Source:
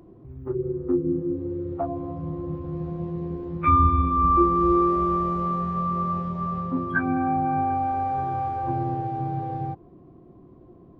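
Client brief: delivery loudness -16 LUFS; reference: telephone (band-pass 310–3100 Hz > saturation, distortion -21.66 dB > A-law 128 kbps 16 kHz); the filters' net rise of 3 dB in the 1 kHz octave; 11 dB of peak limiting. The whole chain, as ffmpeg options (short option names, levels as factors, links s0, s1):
-af "equalizer=f=1000:t=o:g=4,alimiter=limit=0.141:level=0:latency=1,highpass=310,lowpass=3100,asoftclip=threshold=0.106,volume=3.98" -ar 16000 -c:a pcm_alaw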